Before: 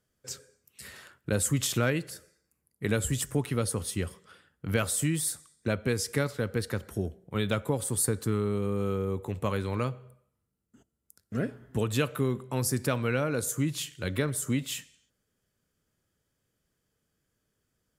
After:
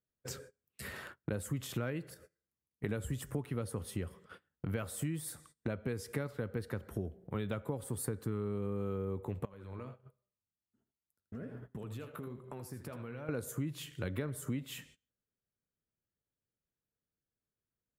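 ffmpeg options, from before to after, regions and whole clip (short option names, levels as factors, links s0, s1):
-filter_complex "[0:a]asettb=1/sr,asplit=3[s0][s1][s2];[s0]atrim=end=2.144[s3];[s1]atrim=start=2.14:end=2.84,asetpts=PTS-STARTPTS,afade=t=in:d=0.004:c=qsin,afade=t=out:st=0.696:d=0.004:c=qsin,acompressor=threshold=0.00282:ratio=3:attack=3.2:release=140:knee=1:detection=peak,bandreject=f=50:t=h:w=6,bandreject=f=100:t=h:w=6,bandreject=f=150:t=h:w=6,bandreject=f=200:t=h:w=6,bandreject=f=250:t=h:w=6,bandreject=f=300:t=h:w=6,bandreject=f=350:t=h:w=6[s4];[s2]atrim=start=2.836[s5];[s3][s4]acrossfade=d=0.004:c1=hsin:c2=qsin[s6];[s6][s5]acrossfade=d=0.004:c1=qsin:c2=hsin,asettb=1/sr,asplit=3[s7][s8][s9];[s7]atrim=end=9.454[s10];[s8]atrim=start=9.45:end=13.29,asetpts=PTS-STARTPTS,afade=t=in:d=0.004:c=qsin,afade=t=out:st=3.836:d=0.004:c=qsin,flanger=delay=5:depth=7.4:regen=57:speed=1.3:shape=sinusoidal,acompressor=threshold=0.00447:ratio=6:attack=3.2:release=140:knee=1:detection=peak,aecho=1:1:82:0.335,atrim=end_sample=169344[s11];[s9]atrim=start=13.286[s12];[s10][s11]acrossfade=d=0.004:c1=hsin:c2=qsin[s13];[s13][s12]acrossfade=d=0.004:c1=qsin:c2=hsin,agate=range=0.0708:threshold=0.00224:ratio=16:detection=peak,equalizer=f=6700:w=0.45:g=-12,acompressor=threshold=0.00501:ratio=3,volume=2.24"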